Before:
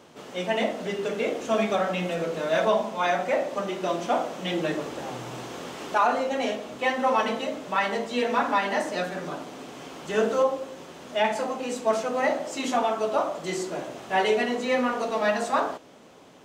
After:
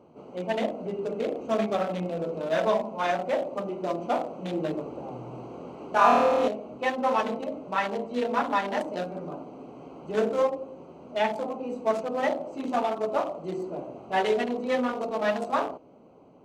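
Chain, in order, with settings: Wiener smoothing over 25 samples; 5.92–6.48 flutter echo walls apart 4.3 m, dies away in 1.3 s; gain -1 dB

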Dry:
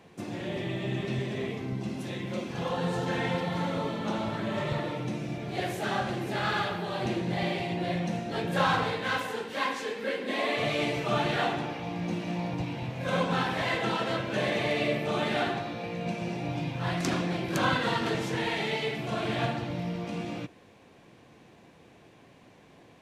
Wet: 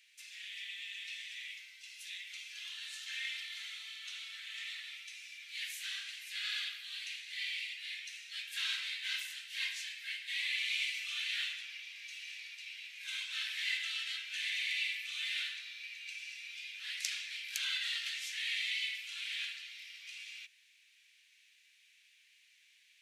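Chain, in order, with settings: steep high-pass 2100 Hz 36 dB/oct

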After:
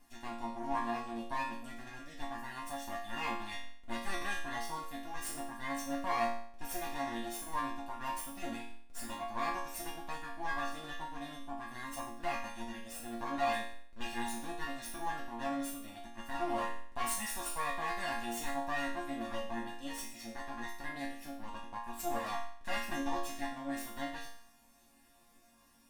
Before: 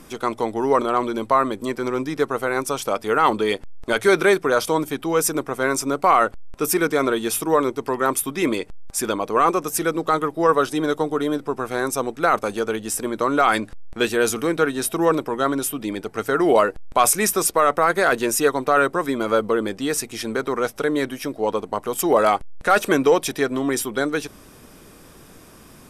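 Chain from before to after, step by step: minimum comb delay 1.1 ms; resonator bank A#3 minor, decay 0.57 s; gain +3.5 dB

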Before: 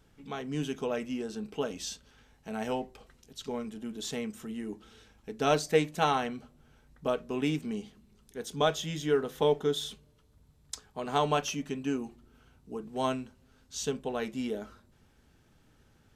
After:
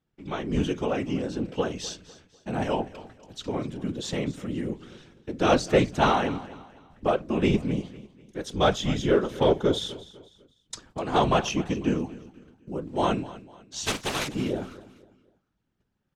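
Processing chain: 13.85–14.27 spectral contrast lowered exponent 0.24; gate -58 dBFS, range -22 dB; bell 170 Hz +6 dB 0.5 oct; whisperiser; in parallel at -5 dB: hard clip -22.5 dBFS, distortion -12 dB; on the sum: air absorption 59 m; feedback echo 0.249 s, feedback 37%, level -18 dB; gain +2 dB

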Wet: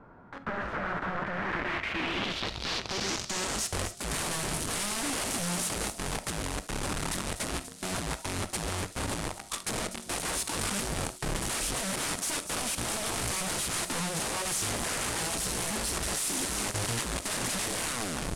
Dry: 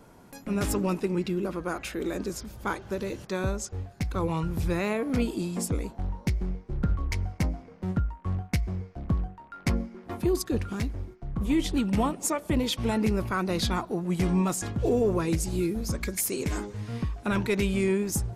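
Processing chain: tape stop at the end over 0.60 s; formant shift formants -3 st; bell 1300 Hz +2.5 dB 0.56 oct; in parallel at -6 dB: companded quantiser 2-bit; on the sum: wrapped overs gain 27 dB; low-pass sweep 1500 Hz -> 9500 Hz, 1.26–3.72; thin delay 0.245 s, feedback 53%, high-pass 4700 Hz, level -10 dB; on a send at -12.5 dB: reverb, pre-delay 5 ms; on the sum: gain -1.5 dB

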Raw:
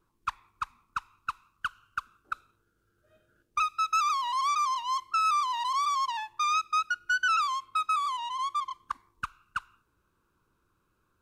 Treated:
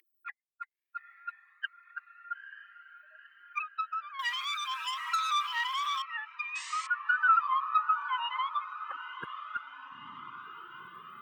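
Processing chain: per-bin expansion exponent 3; treble ducked by the level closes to 880 Hz, closed at -31 dBFS; graphic EQ 125/1000/2000/8000 Hz +6/-4/+11/-12 dB; upward compressor, threshold -33 dBFS; diffused feedback echo 0.928 s, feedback 70%, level -11 dB; 4.19–6.02 sample leveller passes 3; 6.55–6.87 painted sound noise 360–8800 Hz -48 dBFS; high-pass sweep 2000 Hz -> 220 Hz, 6.7–9.93; cascading flanger rising 0.59 Hz; gain +7 dB

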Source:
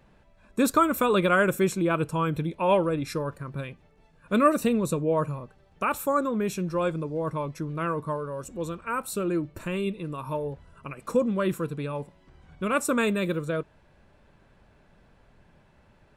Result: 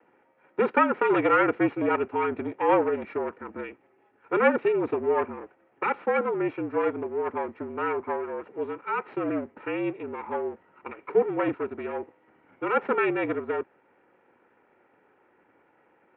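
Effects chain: minimum comb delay 2.1 ms; mistuned SSB -53 Hz 250–2500 Hz; gain +1.5 dB

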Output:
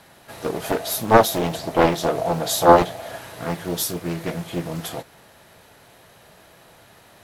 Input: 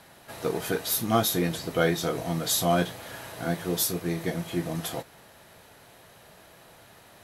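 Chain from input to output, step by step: 0.64–3.18 bell 670 Hz +12 dB 0.52 oct; Doppler distortion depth 0.83 ms; gain +2.5 dB

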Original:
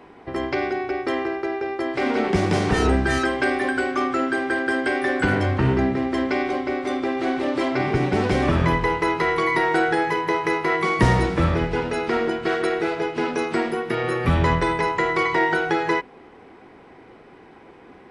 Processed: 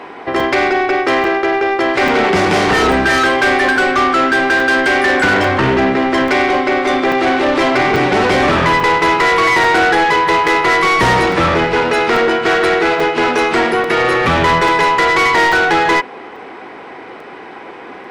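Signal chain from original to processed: overdrive pedal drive 25 dB, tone 3800 Hz, clips at -4 dBFS; crackling interface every 0.84 s, samples 128, zero, from 0.4

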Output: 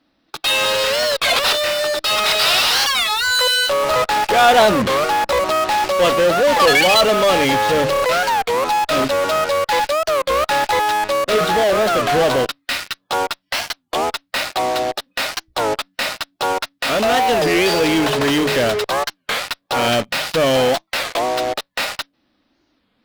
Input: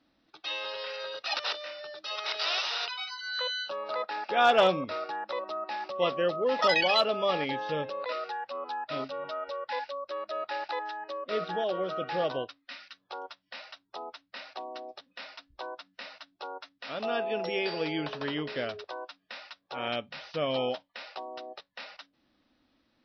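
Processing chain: notches 50/100/150 Hz; in parallel at -11 dB: fuzz box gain 49 dB, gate -48 dBFS; on the sum: record warp 33 1/3 rpm, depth 250 cents; gain +6.5 dB

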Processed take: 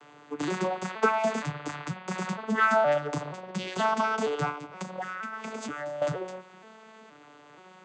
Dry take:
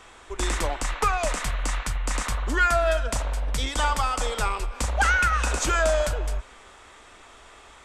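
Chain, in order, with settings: arpeggiated vocoder major triad, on D3, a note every 0.473 s; 4.5–6.02 compressor 6:1, threshold -34 dBFS, peak gain reduction 14 dB

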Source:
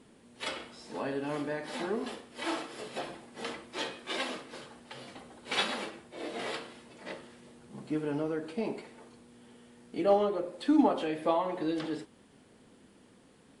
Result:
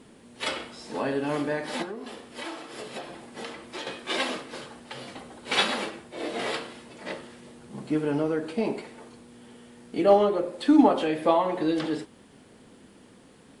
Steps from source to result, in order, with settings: 1.82–3.87 compressor 6:1, threshold -41 dBFS, peak gain reduction 12.5 dB; gain +6.5 dB

